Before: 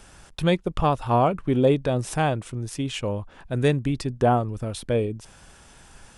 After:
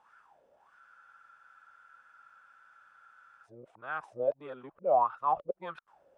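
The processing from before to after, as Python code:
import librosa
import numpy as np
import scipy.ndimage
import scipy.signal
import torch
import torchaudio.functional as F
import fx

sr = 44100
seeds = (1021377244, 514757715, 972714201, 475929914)

y = np.flip(x).copy()
y = fx.wah_lfo(y, sr, hz=1.6, low_hz=520.0, high_hz=1400.0, q=9.2)
y = fx.spec_freeze(y, sr, seeds[0], at_s=0.81, hold_s=2.63)
y = F.gain(torch.from_numpy(y), 2.5).numpy()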